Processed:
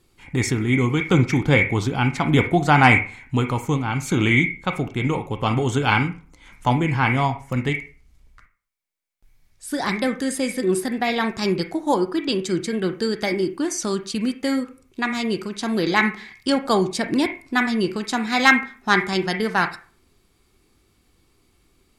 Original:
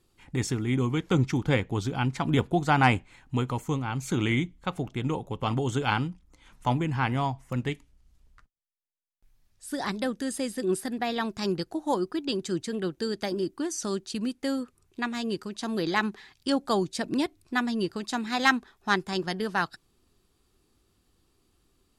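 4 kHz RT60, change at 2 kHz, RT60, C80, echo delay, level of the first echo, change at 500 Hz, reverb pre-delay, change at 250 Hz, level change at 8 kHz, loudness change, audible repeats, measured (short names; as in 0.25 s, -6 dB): 0.35 s, +10.0 dB, 0.40 s, 12.0 dB, none, none, +7.0 dB, 24 ms, +7.0 dB, +6.5 dB, +7.5 dB, none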